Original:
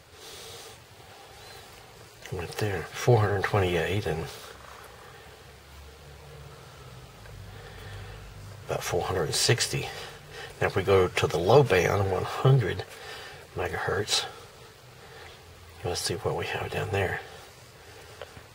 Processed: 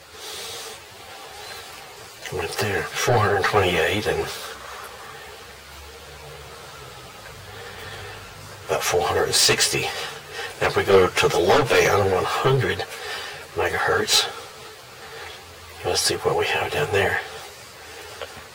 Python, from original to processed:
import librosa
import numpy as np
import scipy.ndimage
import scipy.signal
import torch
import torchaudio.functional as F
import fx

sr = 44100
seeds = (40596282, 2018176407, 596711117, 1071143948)

p1 = fx.low_shelf(x, sr, hz=260.0, db=-10.5)
p2 = fx.fold_sine(p1, sr, drive_db=12, ceiling_db=-8.0)
p3 = p1 + F.gain(torch.from_numpy(p2), -9.0).numpy()
p4 = fx.ensemble(p3, sr)
y = F.gain(torch.from_numpy(p4), 3.5).numpy()